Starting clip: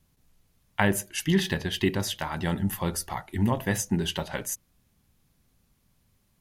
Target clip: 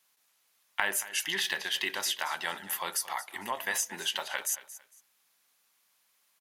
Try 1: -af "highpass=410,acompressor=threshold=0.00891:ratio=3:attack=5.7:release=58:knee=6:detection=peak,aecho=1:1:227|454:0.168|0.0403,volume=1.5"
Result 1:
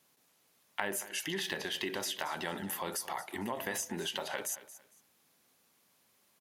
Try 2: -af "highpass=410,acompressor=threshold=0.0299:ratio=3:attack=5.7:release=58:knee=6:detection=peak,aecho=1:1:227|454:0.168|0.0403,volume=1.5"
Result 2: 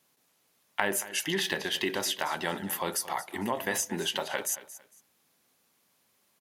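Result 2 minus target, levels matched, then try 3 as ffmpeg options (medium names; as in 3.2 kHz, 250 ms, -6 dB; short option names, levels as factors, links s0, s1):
500 Hz band +8.0 dB
-af "highpass=1000,acompressor=threshold=0.0299:ratio=3:attack=5.7:release=58:knee=6:detection=peak,aecho=1:1:227|454:0.168|0.0403,volume=1.5"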